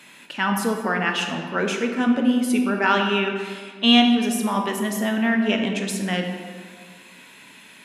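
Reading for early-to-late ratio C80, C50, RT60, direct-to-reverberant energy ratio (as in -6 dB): 6.0 dB, 5.0 dB, 1.8 s, 2.5 dB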